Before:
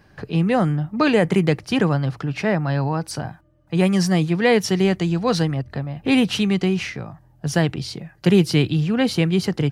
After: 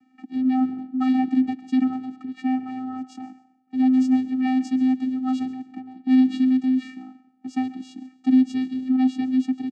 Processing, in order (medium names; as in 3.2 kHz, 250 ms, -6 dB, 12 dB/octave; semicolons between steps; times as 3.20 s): frequency-shifting echo 135 ms, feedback 31%, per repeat -34 Hz, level -21 dB; plate-style reverb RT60 0.76 s, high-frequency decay 0.8×, pre-delay 110 ms, DRR 18.5 dB; vocoder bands 8, square 258 Hz; trim -2 dB